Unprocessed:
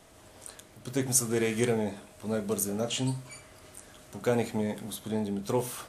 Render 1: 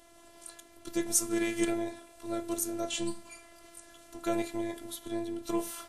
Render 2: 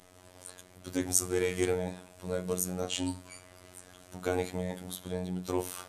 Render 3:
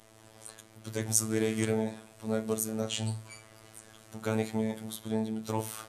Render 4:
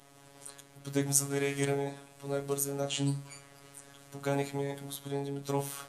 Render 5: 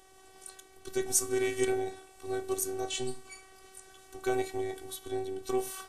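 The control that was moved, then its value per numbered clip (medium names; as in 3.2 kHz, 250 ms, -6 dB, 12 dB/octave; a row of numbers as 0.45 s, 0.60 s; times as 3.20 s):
robot voice, frequency: 340 Hz, 91 Hz, 110 Hz, 140 Hz, 380 Hz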